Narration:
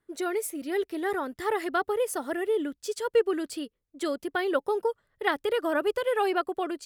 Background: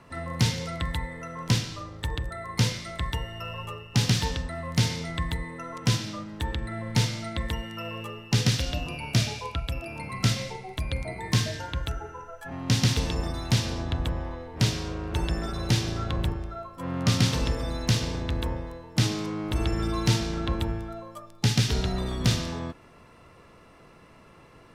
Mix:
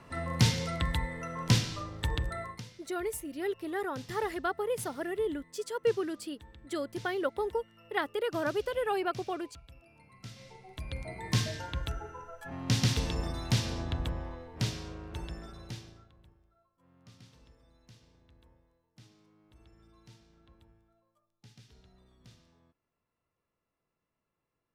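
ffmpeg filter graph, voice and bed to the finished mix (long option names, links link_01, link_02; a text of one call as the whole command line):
ffmpeg -i stem1.wav -i stem2.wav -filter_complex "[0:a]adelay=2700,volume=-5dB[link_01];[1:a]volume=17.5dB,afade=type=out:start_time=2.4:duration=0.21:silence=0.0794328,afade=type=in:start_time=10.32:duration=1.06:silence=0.11885,afade=type=out:start_time=13.8:duration=2.31:silence=0.0354813[link_02];[link_01][link_02]amix=inputs=2:normalize=0" out.wav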